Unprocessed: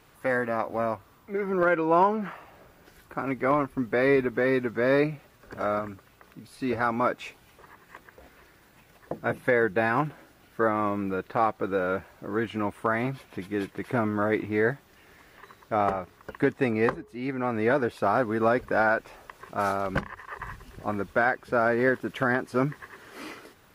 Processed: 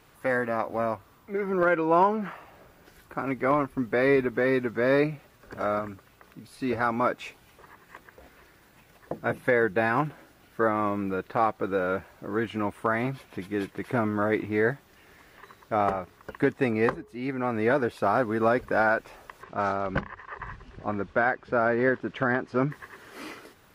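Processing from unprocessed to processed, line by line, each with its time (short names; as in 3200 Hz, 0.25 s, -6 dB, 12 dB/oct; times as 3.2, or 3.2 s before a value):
19.43–22.71 air absorption 120 m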